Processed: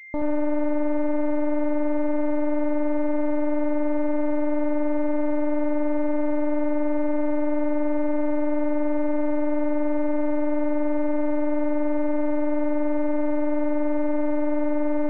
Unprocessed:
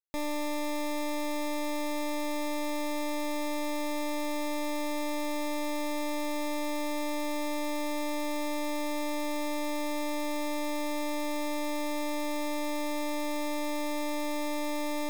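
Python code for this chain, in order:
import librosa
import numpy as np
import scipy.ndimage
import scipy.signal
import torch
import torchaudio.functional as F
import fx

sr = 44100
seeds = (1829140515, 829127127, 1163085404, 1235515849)

y = fx.self_delay(x, sr, depth_ms=0.053)
y = fx.room_early_taps(y, sr, ms=(62, 77), db=(-16.0, -6.5))
y = fx.pwm(y, sr, carrier_hz=2100.0)
y = F.gain(torch.from_numpy(y), 8.5).numpy()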